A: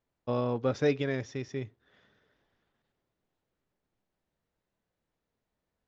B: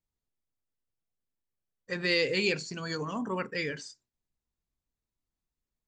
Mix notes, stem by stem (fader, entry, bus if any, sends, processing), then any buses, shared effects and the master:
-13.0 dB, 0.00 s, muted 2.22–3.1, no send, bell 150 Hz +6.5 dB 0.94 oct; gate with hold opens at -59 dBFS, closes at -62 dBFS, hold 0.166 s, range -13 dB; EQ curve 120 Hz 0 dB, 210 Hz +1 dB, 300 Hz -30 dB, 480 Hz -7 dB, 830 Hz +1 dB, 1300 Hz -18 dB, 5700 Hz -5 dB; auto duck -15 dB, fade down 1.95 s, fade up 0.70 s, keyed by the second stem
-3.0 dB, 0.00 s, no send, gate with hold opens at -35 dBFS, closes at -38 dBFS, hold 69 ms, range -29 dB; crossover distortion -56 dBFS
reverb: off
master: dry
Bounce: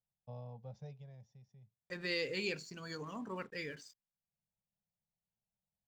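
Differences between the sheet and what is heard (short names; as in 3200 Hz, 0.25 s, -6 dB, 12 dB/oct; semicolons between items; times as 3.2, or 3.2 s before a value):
stem A: missing gate with hold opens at -59 dBFS, closes at -62 dBFS, hold 0.166 s, range -13 dB; stem B -3.0 dB -> -9.5 dB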